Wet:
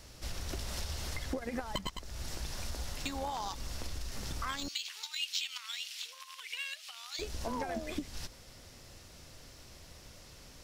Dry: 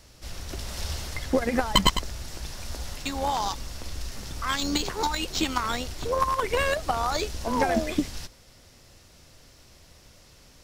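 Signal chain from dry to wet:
downward compressor 8 to 1, threshold −34 dBFS, peak gain reduction 20 dB
0:04.68–0:07.19: high-pass with resonance 2,800 Hz, resonance Q 2.3

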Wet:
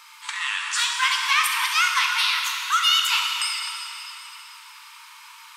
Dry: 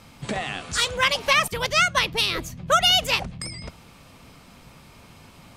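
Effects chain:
in parallel at −2 dB: compressor whose output falls as the input rises −30 dBFS
on the sum: linear-phase brick-wall high-pass 860 Hz
convolution reverb RT60 3.3 s, pre-delay 5 ms, DRR 0.5 dB
level −3 dB

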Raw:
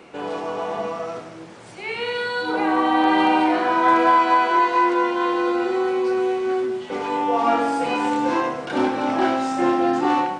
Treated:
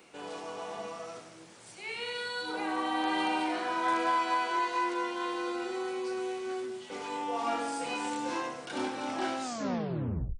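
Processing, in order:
turntable brake at the end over 0.97 s
first-order pre-emphasis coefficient 0.8

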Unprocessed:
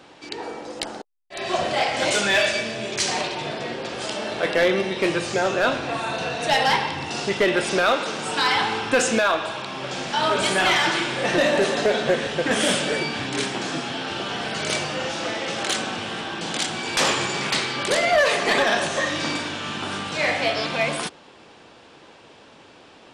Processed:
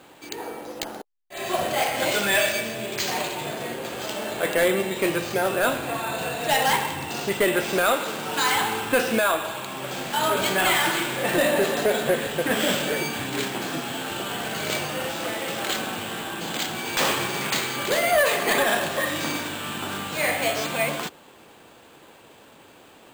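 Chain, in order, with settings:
bad sample-rate conversion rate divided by 4×, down filtered, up hold
level −1.5 dB

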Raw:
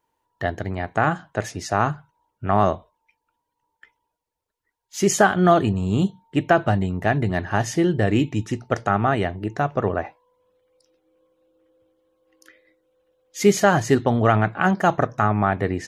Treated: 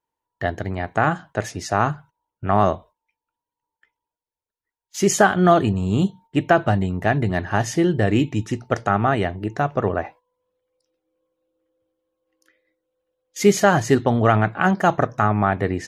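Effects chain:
noise gate −44 dBFS, range −11 dB
level +1 dB

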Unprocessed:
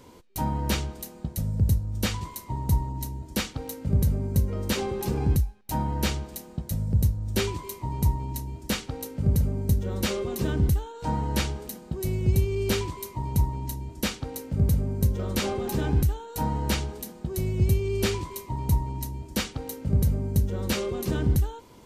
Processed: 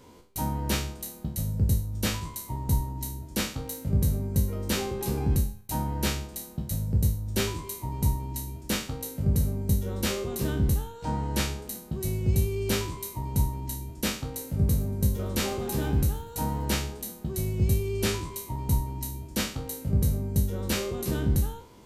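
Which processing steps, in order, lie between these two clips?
peak hold with a decay on every bin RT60 0.43 s
dynamic equaliser 8,700 Hz, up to +4 dB, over −47 dBFS, Q 1.2
0:14.26–0:16.65: feedback echo with a swinging delay time 119 ms, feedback 44%, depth 206 cents, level −20 dB
level −3 dB

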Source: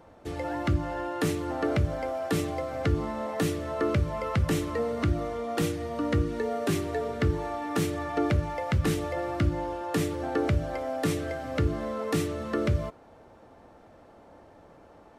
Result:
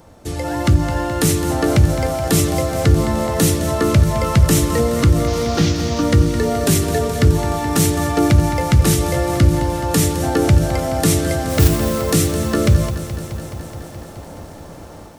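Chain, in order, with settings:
0:05.27–0:06.03: linear delta modulator 32 kbit/s, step −37 dBFS
bass and treble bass +7 dB, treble +14 dB
in parallel at +2 dB: brickwall limiter −17.5 dBFS, peak gain reduction 8 dB
on the sum: automatic gain control gain up to 8.5 dB
0:11.49–0:12.02: noise that follows the level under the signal 12 dB
feedback echo at a low word length 212 ms, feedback 80%, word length 7 bits, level −12.5 dB
level −2 dB

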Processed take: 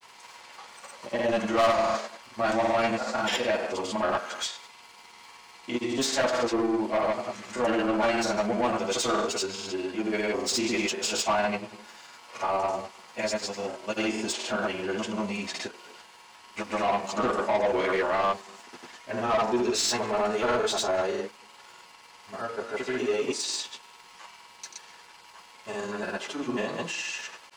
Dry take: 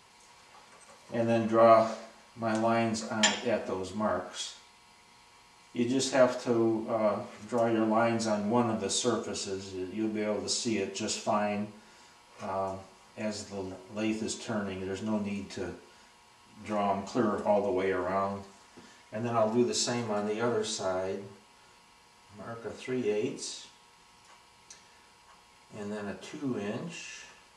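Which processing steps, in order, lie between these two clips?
mid-hump overdrive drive 24 dB, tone 6,300 Hz, clips at −9.5 dBFS
dead-zone distortion −52 dBFS
granular cloud, pitch spread up and down by 0 semitones
level −5 dB

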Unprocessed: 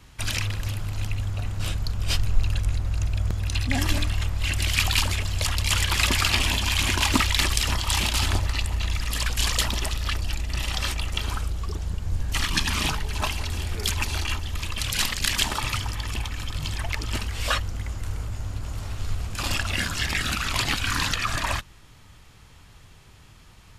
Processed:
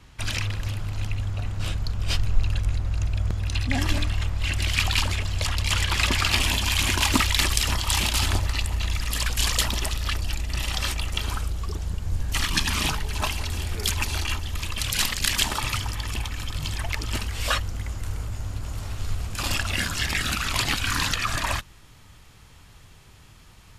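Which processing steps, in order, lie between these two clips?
high-shelf EQ 8,600 Hz −8 dB, from 0:06.31 +3.5 dB

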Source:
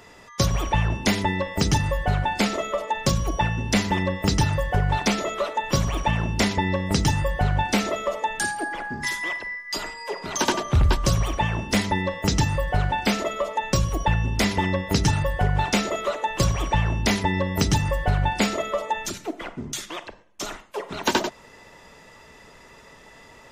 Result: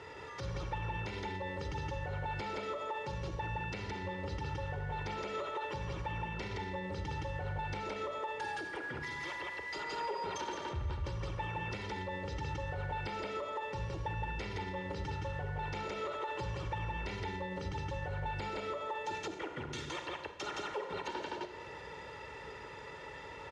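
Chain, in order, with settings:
variable-slope delta modulation 64 kbit/s
low-pass filter 3,500 Hz 12 dB per octave
single-tap delay 167 ms −3 dB
downward compressor 6 to 1, threshold −34 dBFS, peak gain reduction 19.5 dB
high-pass filter 56 Hz 24 dB per octave
four-comb reverb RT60 1.1 s, combs from 32 ms, DRR 10.5 dB
brickwall limiter −30 dBFS, peak gain reduction 11 dB
comb filter 2.2 ms, depth 61%
level −1.5 dB

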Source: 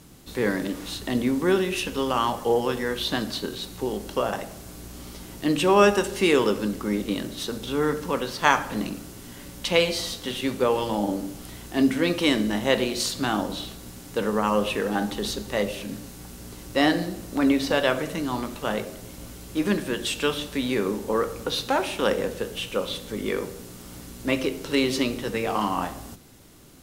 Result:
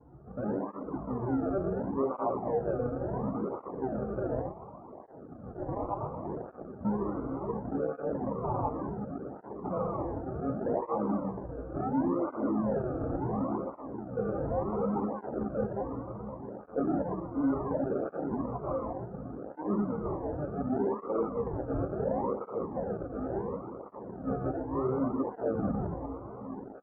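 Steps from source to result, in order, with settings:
delay that plays each chunk backwards 119 ms, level −1 dB
soft clipping −18 dBFS, distortion −11 dB
feedback delay with all-pass diffusion 763 ms, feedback 73%, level −14 dB
asymmetric clip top −22 dBFS, bottom −20.5 dBFS
0:04.50–0:06.85: Butterworth high-pass 650 Hz 36 dB per octave
double-tracking delay 15 ms −4.5 dB
sample-and-hold swept by an LFO 35×, swing 60% 0.79 Hz
elliptic low-pass filter 1,200 Hz, stop band 80 dB
through-zero flanger with one copy inverted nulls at 0.69 Hz, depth 5.5 ms
level −3.5 dB

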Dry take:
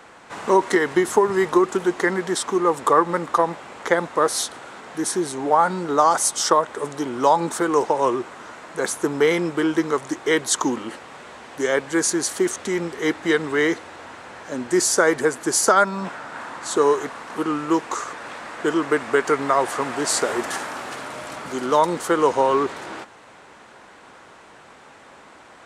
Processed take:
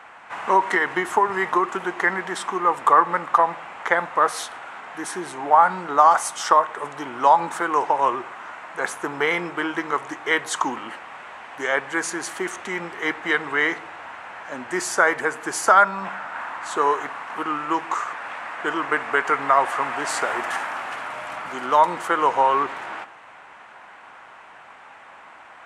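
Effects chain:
flat-topped bell 1,400 Hz +11.5 dB 2.5 octaves
on a send: convolution reverb RT60 0.60 s, pre-delay 10 ms, DRR 16 dB
on the sum: level −8.5 dB

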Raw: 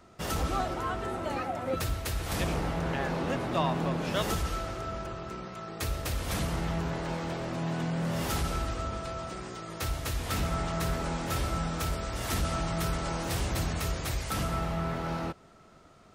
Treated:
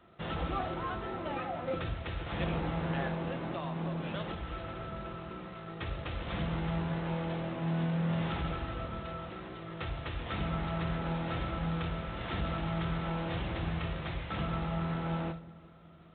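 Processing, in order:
high-pass filter 46 Hz 12 dB per octave
0:03.07–0:05.53: downward compressor 20 to 1, threshold −30 dBFS, peak gain reduction 8.5 dB
feedback echo with a low-pass in the loop 369 ms, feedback 66%, low-pass 1,100 Hz, level −22 dB
convolution reverb RT60 0.50 s, pre-delay 6 ms, DRR 8.5 dB
level −4 dB
G.726 24 kbit/s 8,000 Hz

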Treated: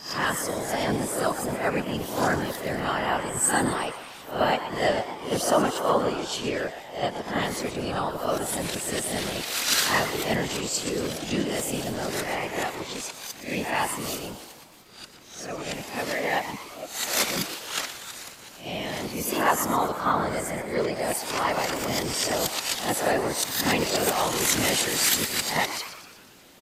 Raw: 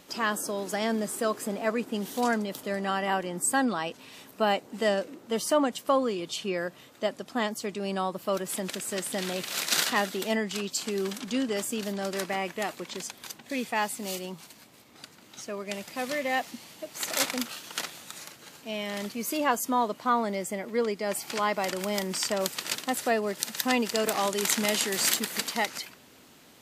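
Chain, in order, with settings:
peak hold with a rise ahead of every peak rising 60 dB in 0.43 s
random phases in short frames
echo with shifted repeats 120 ms, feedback 53%, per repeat +140 Hz, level −11.5 dB
level +1 dB

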